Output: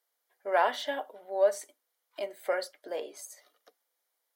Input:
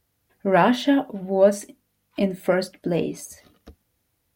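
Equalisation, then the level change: HPF 500 Hz 24 dB/oct; notch 2600 Hz, Q 6.3; -6.5 dB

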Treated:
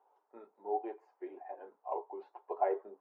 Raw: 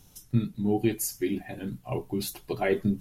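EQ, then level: Chebyshev high-pass 410 Hz, order 4; ladder low-pass 990 Hz, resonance 60%; tilt +2.5 dB/oct; +5.5 dB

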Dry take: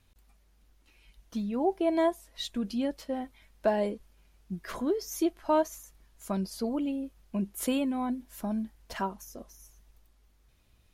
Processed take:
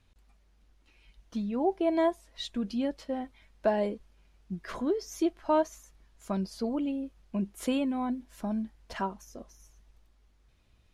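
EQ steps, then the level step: air absorption 51 m; 0.0 dB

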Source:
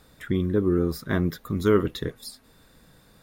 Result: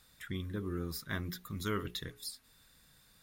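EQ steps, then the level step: passive tone stack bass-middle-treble 5-5-5; notches 60/120/180/240/300/360/420 Hz; +3.5 dB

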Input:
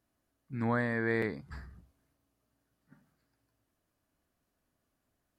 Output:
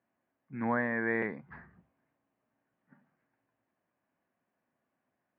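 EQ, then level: air absorption 200 m; speaker cabinet 240–2400 Hz, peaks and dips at 300 Hz -7 dB, 430 Hz -6 dB, 630 Hz -3 dB, 1300 Hz -6 dB; +5.0 dB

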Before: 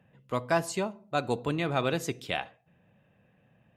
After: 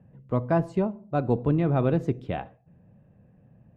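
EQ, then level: tilt -4.5 dB/oct; low shelf 110 Hz -7 dB; high shelf 2900 Hz -10.5 dB; 0.0 dB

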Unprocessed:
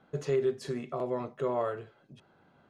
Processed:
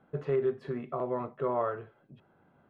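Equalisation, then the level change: dynamic EQ 1200 Hz, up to +6 dB, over -48 dBFS, Q 1.1; air absorption 490 m; high shelf 7700 Hz +8 dB; 0.0 dB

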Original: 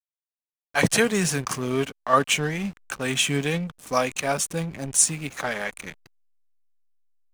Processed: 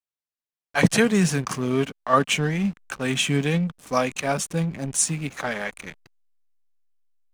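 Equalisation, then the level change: high shelf 7800 Hz -6.5 dB; dynamic EQ 190 Hz, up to +6 dB, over -39 dBFS, Q 1.3; 0.0 dB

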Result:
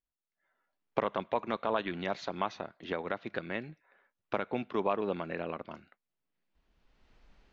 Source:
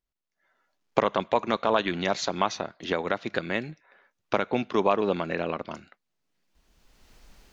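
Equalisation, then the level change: LPF 3300 Hz 12 dB/oct; -7.5 dB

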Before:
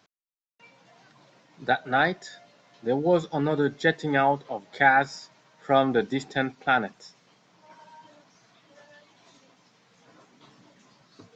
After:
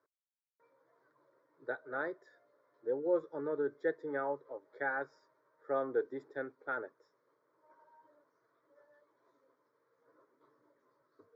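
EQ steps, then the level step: band-pass 580 Hz, Q 0.87; air absorption 76 m; fixed phaser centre 750 Hz, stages 6; -6.5 dB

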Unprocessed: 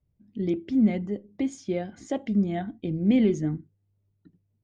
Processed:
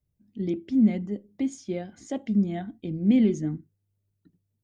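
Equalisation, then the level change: high shelf 5100 Hz +8.5 dB; dynamic EQ 230 Hz, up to +6 dB, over -34 dBFS, Q 1.5; -4.5 dB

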